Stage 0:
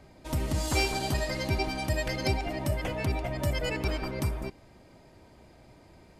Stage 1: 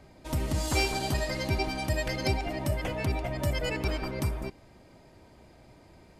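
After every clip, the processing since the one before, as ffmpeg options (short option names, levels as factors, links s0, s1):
-af anull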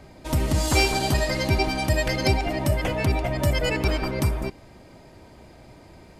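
-af "acontrast=79"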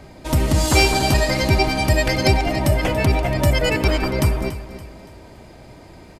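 -af "aecho=1:1:284|568|852|1136:0.2|0.0838|0.0352|0.0148,volume=1.78"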